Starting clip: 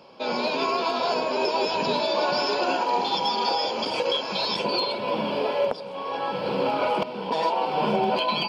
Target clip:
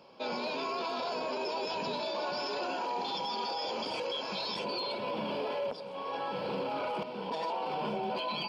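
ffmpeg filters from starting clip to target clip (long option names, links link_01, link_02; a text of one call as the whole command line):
ffmpeg -i in.wav -af "alimiter=limit=-20.5dB:level=0:latency=1:release=11,volume=-6.5dB" out.wav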